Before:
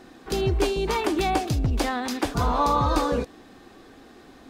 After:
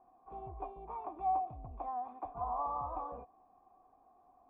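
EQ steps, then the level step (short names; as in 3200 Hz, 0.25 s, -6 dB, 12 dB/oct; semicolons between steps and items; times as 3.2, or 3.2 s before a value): vocal tract filter a; low shelf 130 Hz +10 dB; -4.0 dB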